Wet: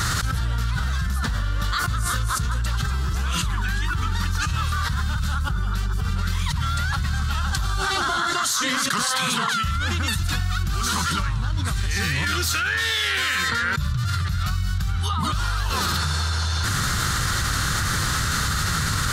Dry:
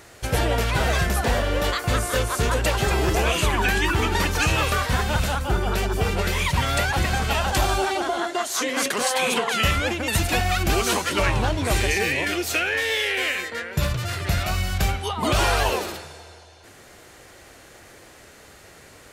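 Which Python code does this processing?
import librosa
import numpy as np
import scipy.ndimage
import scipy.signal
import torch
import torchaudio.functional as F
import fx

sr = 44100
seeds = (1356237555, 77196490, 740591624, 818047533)

y = fx.curve_eq(x, sr, hz=(160.0, 330.0, 470.0, 680.0, 1300.0, 2400.0, 3800.0, 6600.0, 12000.0), db=(0, -19, -22, -23, -1, -16, -4, -7, -10))
y = fx.env_flatten(y, sr, amount_pct=100)
y = F.gain(torch.from_numpy(y), -4.5).numpy()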